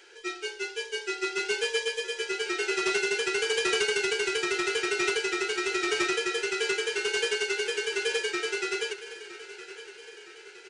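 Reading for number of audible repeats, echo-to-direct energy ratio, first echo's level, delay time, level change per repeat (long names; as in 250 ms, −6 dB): 4, −13.5 dB, −15.0 dB, 964 ms, −5.0 dB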